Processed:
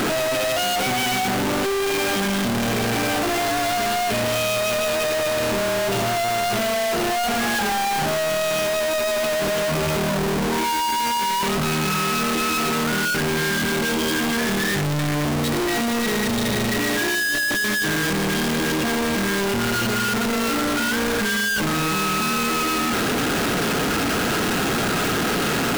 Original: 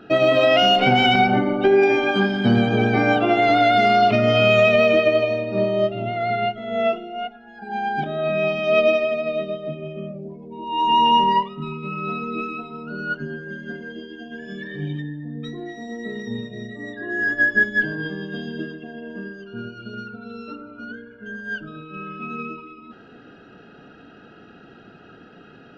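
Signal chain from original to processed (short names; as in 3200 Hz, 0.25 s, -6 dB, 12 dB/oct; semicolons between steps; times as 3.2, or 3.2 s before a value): infinite clipping; 13.55–14.11 notch 1800 Hz, Q 12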